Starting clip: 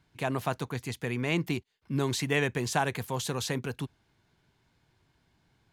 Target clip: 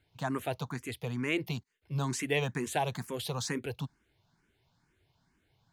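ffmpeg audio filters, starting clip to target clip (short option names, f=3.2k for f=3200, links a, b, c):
-filter_complex "[0:a]asplit=2[a][b];[b]afreqshift=2.2[c];[a][c]amix=inputs=2:normalize=1"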